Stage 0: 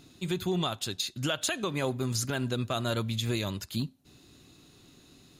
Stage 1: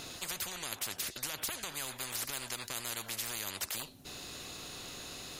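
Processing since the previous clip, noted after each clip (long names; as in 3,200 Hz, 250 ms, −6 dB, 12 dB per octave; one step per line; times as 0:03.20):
every bin compressed towards the loudest bin 10 to 1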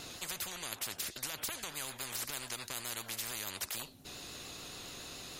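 pitch vibrato 7 Hz 54 cents
level −1.5 dB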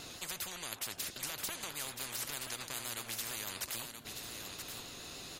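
single-tap delay 977 ms −7 dB
level −1 dB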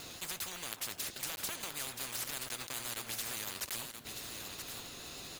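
one scale factor per block 3 bits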